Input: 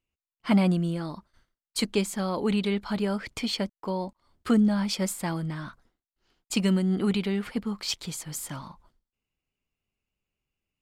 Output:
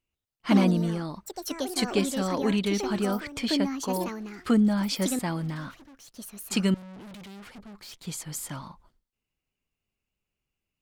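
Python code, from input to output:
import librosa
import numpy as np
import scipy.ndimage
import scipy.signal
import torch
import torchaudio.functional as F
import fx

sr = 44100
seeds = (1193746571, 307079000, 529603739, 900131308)

y = fx.tube_stage(x, sr, drive_db=43.0, bias=0.8, at=(6.74, 8.07))
y = fx.echo_pitch(y, sr, ms=138, semitones=5, count=2, db_per_echo=-6.0)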